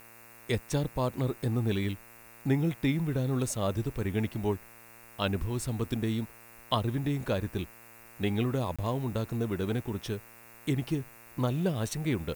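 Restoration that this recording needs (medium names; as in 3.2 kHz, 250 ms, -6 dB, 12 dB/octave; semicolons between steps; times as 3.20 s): de-hum 115.7 Hz, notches 24; interpolate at 8.76 s, 26 ms; noise print and reduce 24 dB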